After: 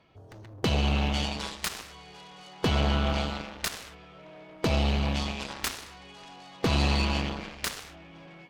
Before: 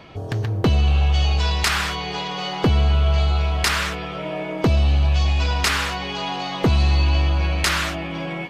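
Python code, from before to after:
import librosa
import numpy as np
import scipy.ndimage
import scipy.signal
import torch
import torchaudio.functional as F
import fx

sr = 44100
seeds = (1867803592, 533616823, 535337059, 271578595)

y = fx.cheby_harmonics(x, sr, harmonics=(7,), levels_db=(-12,), full_scale_db=-5.5)
y = fx.upward_expand(y, sr, threshold_db=-35.0, expansion=1.5)
y = F.gain(torch.from_numpy(y), -6.5).numpy()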